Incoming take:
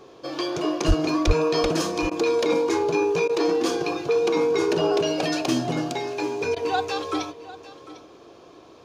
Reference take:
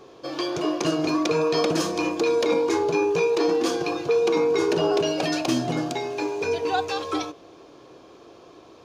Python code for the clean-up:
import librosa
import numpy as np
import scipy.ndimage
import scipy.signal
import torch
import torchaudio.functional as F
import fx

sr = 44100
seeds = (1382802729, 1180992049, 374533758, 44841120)

y = fx.fix_declip(x, sr, threshold_db=-10.5)
y = fx.highpass(y, sr, hz=140.0, slope=24, at=(0.87, 0.99), fade=0.02)
y = fx.highpass(y, sr, hz=140.0, slope=24, at=(1.26, 1.38), fade=0.02)
y = fx.fix_interpolate(y, sr, at_s=(2.1, 3.28, 6.55), length_ms=12.0)
y = fx.fix_echo_inverse(y, sr, delay_ms=750, level_db=-17.0)